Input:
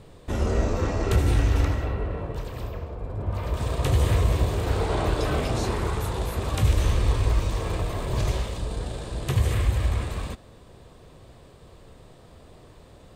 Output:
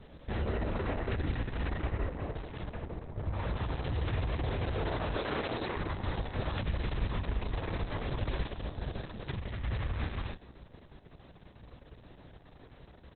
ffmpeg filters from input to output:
ffmpeg -i in.wav -filter_complex "[0:a]asettb=1/sr,asplit=3[link_01][link_02][link_03];[link_01]atrim=end=5.184[link_04];[link_02]atrim=start=5.18:end=5.77,asetpts=PTS-STARTPTS,afade=type=in:duration=0.004:curve=qsin,afade=type=out:start_time=0.586:duration=0.004:curve=qsin,highpass=frequency=280:poles=1[link_05];[link_03]atrim=start=5.766[link_06];[link_04][link_05]acrossfade=duration=0.004:curve1=hsin:curve2=qsin[link_07];[link_07][link_06]acrossfade=duration=0.004:curve1=qsin:curve2=hsin,acrusher=bits=7:mode=log:mix=0:aa=0.000001,alimiter=limit=-20.5dB:level=0:latency=1:release=16,asettb=1/sr,asplit=3[link_08][link_09][link_10];[link_08]atrim=end=2.144[link_11];[link_09]atrim=start=2.14:end=2.73,asetpts=PTS-STARTPTS,afade=type=in:duration=0.004:curve=qsin,afade=type=out:start_time=0.586:duration=0.004:curve=qsin,highshelf=frequency=9900:gain=10.5[link_12];[link_10]atrim=start=2.726[link_13];[link_11][link_12]acrossfade=duration=0.004:curve1=hsin:curve2=qsin[link_14];[link_14][link_13]acrossfade=duration=0.004:curve1=qsin:curve2=hsin,asplit=2[link_15][link_16];[link_16]adelay=99.13,volume=-18dB,highshelf=frequency=4000:gain=-2.23[link_17];[link_15][link_17]amix=inputs=2:normalize=0,aeval=exprs='val(0)+0.00355*(sin(2*PI*60*n/s)+sin(2*PI*2*60*n/s)/2+sin(2*PI*3*60*n/s)/3+sin(2*PI*4*60*n/s)/4+sin(2*PI*5*60*n/s)/5)':channel_layout=same,asplit=3[link_18][link_19][link_20];[link_18]afade=type=out:start_time=9.08:duration=0.02[link_21];[link_19]acompressor=threshold=-28dB:ratio=4,afade=type=in:start_time=9.08:duration=0.02,afade=type=out:start_time=9.63:duration=0.02[link_22];[link_20]afade=type=in:start_time=9.63:duration=0.02[link_23];[link_21][link_22][link_23]amix=inputs=3:normalize=0,equalizer=frequency=1800:width=5:gain=5,volume=-4.5dB" -ar 48000 -c:a libopus -b:a 6k out.opus

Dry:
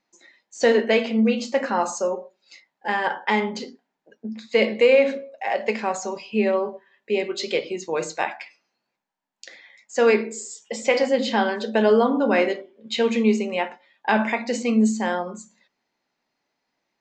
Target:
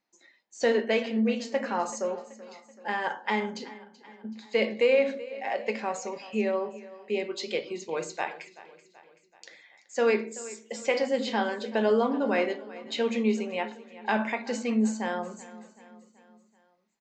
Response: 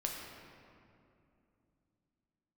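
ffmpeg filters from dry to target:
-af "aecho=1:1:381|762|1143|1524:0.126|0.0667|0.0354|0.0187,volume=-6.5dB"

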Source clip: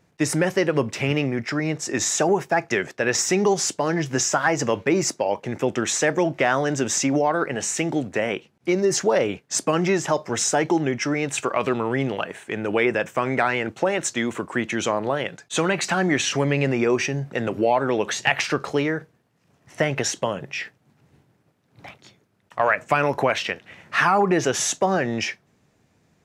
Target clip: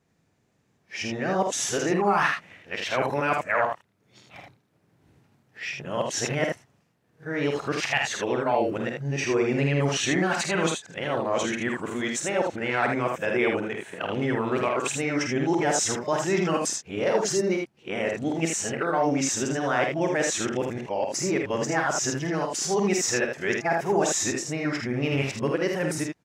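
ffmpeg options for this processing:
ffmpeg -i in.wav -af "areverse,aecho=1:1:49|79:0.501|0.596,dynaudnorm=framelen=180:gausssize=11:maxgain=6dB,volume=-8.5dB" out.wav

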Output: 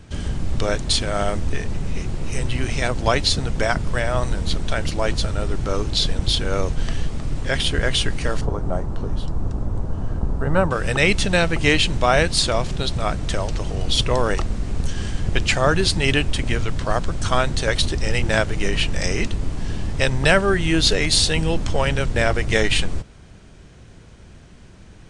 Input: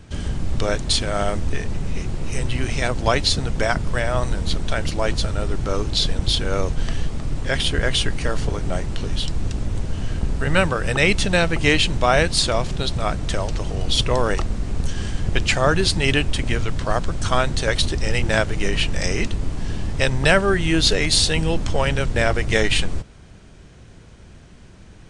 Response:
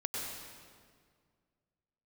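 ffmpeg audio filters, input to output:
-filter_complex "[0:a]asettb=1/sr,asplit=3[link_01][link_02][link_03];[link_01]atrim=end=8.414[link_04];[link_02]atrim=start=8.41:end=10.71,asetpts=PTS-STARTPTS,afade=type=in:duration=0.004:curve=qsin,afade=type=out:start_time=2.296:duration=0.004:curve=qsin,highshelf=frequency=1600:width_type=q:width=1.5:gain=-12.5[link_05];[link_03]atrim=start=10.706[link_06];[link_04][link_05]acrossfade=duration=0.004:curve1=hsin:curve2=qsin[link_07];[link_07][link_06]acrossfade=duration=0.004:curve1=qsin:curve2=hsin"

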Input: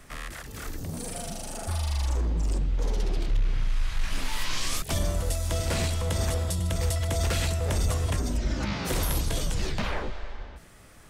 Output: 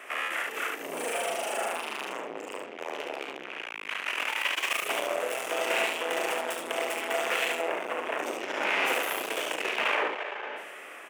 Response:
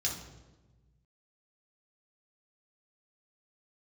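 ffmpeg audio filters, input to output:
-filter_complex "[0:a]dynaudnorm=framelen=340:gausssize=5:maxgain=3.5dB,asoftclip=type=tanh:threshold=-32dB,asettb=1/sr,asplit=3[link_01][link_02][link_03];[link_01]atrim=end=7.664[link_04];[link_02]atrim=start=7.66:end=8.19,asetpts=PTS-STARTPTS,afade=type=in:duration=0.004:curve=qsin,afade=type=out:start_time=0.526:duration=0.004:curve=qsin,acrossover=split=2600[link_05][link_06];[link_06]acompressor=threshold=-53dB:ratio=4:attack=1:release=60[link_07];[link_05][link_07]amix=inputs=2:normalize=0[link_08];[link_03]atrim=start=8.186[link_09];[link_04][link_08]acrossfade=duration=0.004:curve1=hsin:curve2=qsin[link_10];[link_10][link_09]acrossfade=duration=0.004:curve1=qsin:curve2=hsin,highpass=frequency=390:width=0.5412,highpass=frequency=390:width=1.3066,highshelf=frequency=3400:width_type=q:width=3:gain=-8,asplit=2[link_11][link_12];[link_12]aecho=0:1:36|72:0.376|0.631[link_13];[link_11][link_13]amix=inputs=2:normalize=0,volume=8.5dB"

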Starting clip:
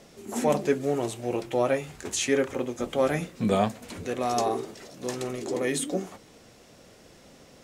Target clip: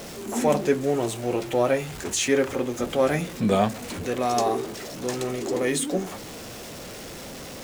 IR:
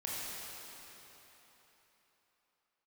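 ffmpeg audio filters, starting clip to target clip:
-af "aeval=exprs='val(0)+0.5*0.015*sgn(val(0))':channel_layout=same,volume=2dB"

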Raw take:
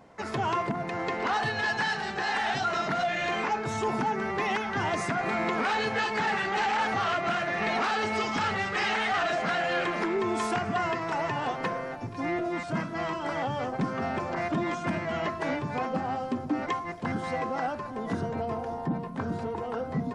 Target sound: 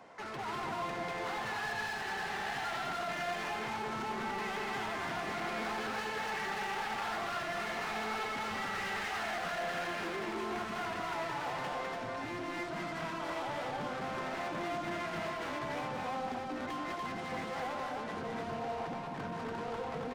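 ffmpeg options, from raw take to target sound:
ffmpeg -i in.wav -filter_complex "[0:a]bandreject=frequency=50:width_type=h:width=6,bandreject=frequency=100:width_type=h:width=6,acrossover=split=250|1100|3700[link_01][link_02][link_03][link_04];[link_04]acompressor=threshold=-56dB:ratio=6[link_05];[link_01][link_02][link_03][link_05]amix=inputs=4:normalize=0,asoftclip=type=hard:threshold=-30.5dB,asplit=2[link_06][link_07];[link_07]highpass=frequency=720:poles=1,volume=16dB,asoftclip=type=tanh:threshold=-30.5dB[link_08];[link_06][link_08]amix=inputs=2:normalize=0,lowpass=frequency=5500:poles=1,volume=-6dB,aecho=1:1:201.2|288.6:0.708|0.794,volume=-7.5dB" out.wav

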